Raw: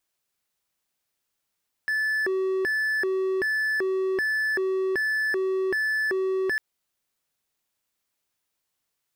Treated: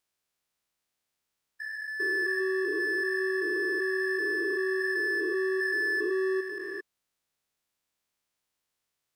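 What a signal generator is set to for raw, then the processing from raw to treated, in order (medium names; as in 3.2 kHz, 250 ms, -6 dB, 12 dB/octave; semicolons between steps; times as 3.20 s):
siren hi-lo 379–1740 Hz 1.3 per s triangle -20.5 dBFS 4.70 s
spectrogram pixelated in time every 400 ms; treble shelf 11 kHz -6 dB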